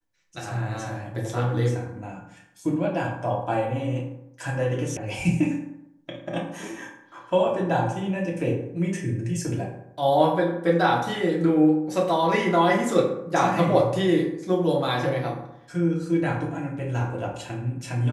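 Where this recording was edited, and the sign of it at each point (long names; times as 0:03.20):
0:04.97: cut off before it has died away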